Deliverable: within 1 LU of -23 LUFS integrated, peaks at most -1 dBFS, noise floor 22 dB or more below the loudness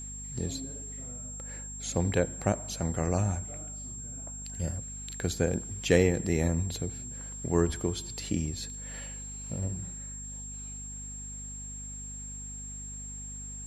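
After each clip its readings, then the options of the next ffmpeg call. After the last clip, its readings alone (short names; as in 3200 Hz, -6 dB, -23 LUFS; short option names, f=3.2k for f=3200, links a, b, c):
hum 50 Hz; harmonics up to 250 Hz; hum level -41 dBFS; steady tone 7500 Hz; tone level -40 dBFS; loudness -33.0 LUFS; peak -7.0 dBFS; loudness target -23.0 LUFS
-> -af "bandreject=f=50:t=h:w=6,bandreject=f=100:t=h:w=6,bandreject=f=150:t=h:w=6,bandreject=f=200:t=h:w=6,bandreject=f=250:t=h:w=6"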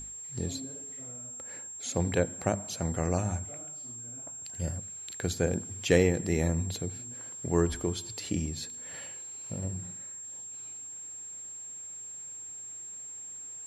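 hum none; steady tone 7500 Hz; tone level -40 dBFS
-> -af "bandreject=f=7.5k:w=30"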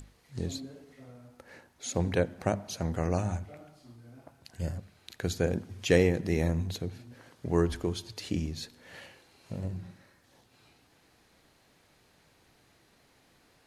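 steady tone none; loudness -32.0 LUFS; peak -7.5 dBFS; loudness target -23.0 LUFS
-> -af "volume=9dB,alimiter=limit=-1dB:level=0:latency=1"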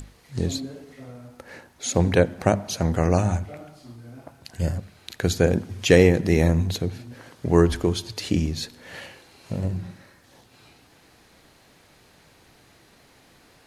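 loudness -23.0 LUFS; peak -1.0 dBFS; noise floor -56 dBFS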